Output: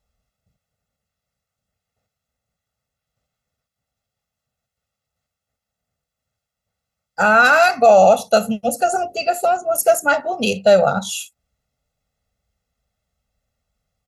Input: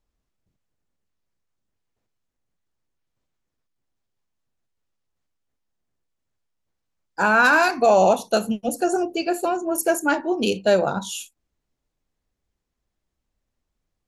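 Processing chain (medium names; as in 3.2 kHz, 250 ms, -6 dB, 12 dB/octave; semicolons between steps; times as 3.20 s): high-pass 50 Hz; comb 1.5 ms, depth 96%; in parallel at +1 dB: peak limiter -7 dBFS, peak gain reduction 5.5 dB; on the sum: trim -4 dB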